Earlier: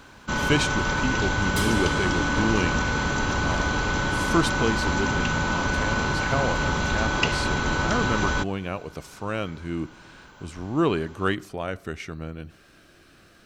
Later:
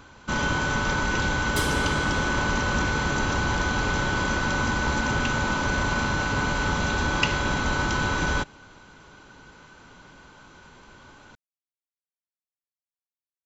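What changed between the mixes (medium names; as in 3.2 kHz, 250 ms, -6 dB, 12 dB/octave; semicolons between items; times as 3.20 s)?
speech: muted; second sound: add high-pass 300 Hz 24 dB/octave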